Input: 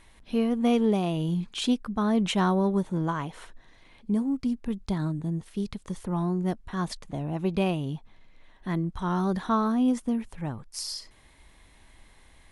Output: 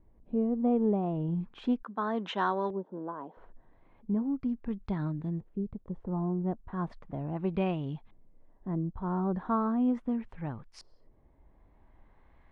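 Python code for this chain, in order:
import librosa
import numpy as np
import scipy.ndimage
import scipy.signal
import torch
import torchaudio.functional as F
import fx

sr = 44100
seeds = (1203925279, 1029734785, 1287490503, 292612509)

y = fx.cabinet(x, sr, low_hz=260.0, low_slope=24, high_hz=7800.0, hz=(330.0, 1000.0, 1600.0, 2300.0, 3600.0, 6600.0), db=(-4, 4, 4, -7, 5, 5), at=(1.83, 3.37))
y = fx.wow_flutter(y, sr, seeds[0], rate_hz=2.1, depth_cents=28.0)
y = fx.filter_lfo_lowpass(y, sr, shape='saw_up', hz=0.37, low_hz=450.0, high_hz=2900.0, q=0.89)
y = y * 10.0 ** (-4.0 / 20.0)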